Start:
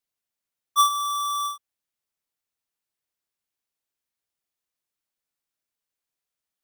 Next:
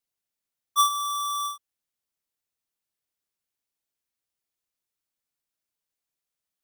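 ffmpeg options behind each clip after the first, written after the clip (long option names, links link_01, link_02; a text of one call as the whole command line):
ffmpeg -i in.wav -af "equalizer=frequency=1300:width_type=o:width=2.9:gain=-2.5" out.wav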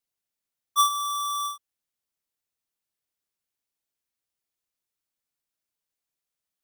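ffmpeg -i in.wav -af anull out.wav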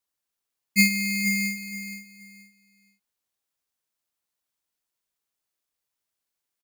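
ffmpeg -i in.wav -filter_complex "[0:a]aeval=exprs='val(0)*sin(2*PI*960*n/s)':channel_layout=same,asplit=2[link_01][link_02];[link_02]aecho=0:1:474|948|1422:0.299|0.0687|0.0158[link_03];[link_01][link_03]amix=inputs=2:normalize=0,volume=5dB" out.wav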